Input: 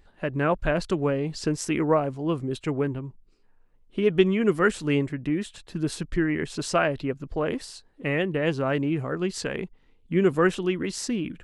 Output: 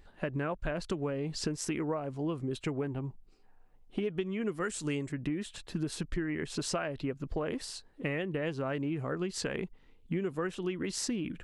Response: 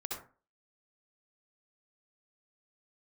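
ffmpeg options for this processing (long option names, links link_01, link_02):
-filter_complex "[0:a]asettb=1/sr,asplit=3[link_01][link_02][link_03];[link_01]atrim=end=4.604[link_04];[link_02]atrim=start=4.6:end=5.12,asetpts=PTS-STARTPTS,afade=type=in:duration=0.004:curve=qsin,afade=type=out:start_time=0.516:duration=0.004:curve=qsin,equalizer=frequency=7700:width=0.89:gain=12.5[link_05];[link_03]atrim=start=5.116[link_06];[link_04][link_05]acrossfade=duration=0.004:curve1=hsin:curve2=qsin[link_07];[link_07][link_06]acrossfade=duration=0.004:curve1=qsin:curve2=hsin,acompressor=threshold=-30dB:ratio=10,asettb=1/sr,asplit=3[link_08][link_09][link_10];[link_08]atrim=end=2.824[link_11];[link_09]atrim=start=2.82:end=4,asetpts=PTS-STARTPTS,afade=type=in:duration=0.004:curve=qsin,afade=type=out:start_time=1.176:duration=0.004:curve=qsin,equalizer=frequency=760:width=5.9:gain=11[link_12];[link_10]atrim=start=3.996[link_13];[link_11][link_12]acrossfade=duration=0.004:curve1=hsin:curve2=qsin[link_14];[link_14][link_13]acrossfade=duration=0.004:curve1=qsin:curve2=hsin"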